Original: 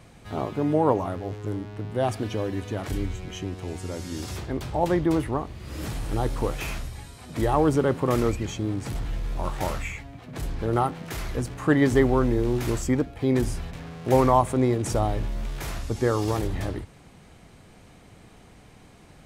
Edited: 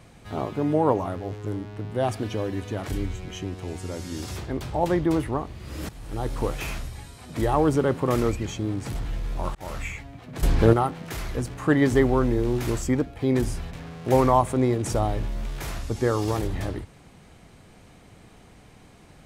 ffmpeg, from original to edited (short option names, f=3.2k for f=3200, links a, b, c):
-filter_complex "[0:a]asplit=5[a][b][c][d][e];[a]atrim=end=5.89,asetpts=PTS-STARTPTS,afade=t=out:st=5.886:d=0.004:c=hsin:silence=0.158489[f];[b]atrim=start=5.89:end=9.55,asetpts=PTS-STARTPTS,afade=t=in:d=0.53:silence=0.158489,afade=t=out:st=3.656:d=0.004:c=hsin[g];[c]atrim=start=9.55:end=10.432,asetpts=PTS-STARTPTS,afade=t=in:d=0.28[h];[d]atrim=start=10.428:end=10.732,asetpts=PTS-STARTPTS,volume=10.5dB[i];[e]atrim=start=10.728[j];[f][g][h]concat=n=3:v=0:a=1[k];[k][i]acrossfade=d=0.004:c1=hsin:c2=hsin[l];[l][j]acrossfade=d=0.004:c1=hsin:c2=hsin"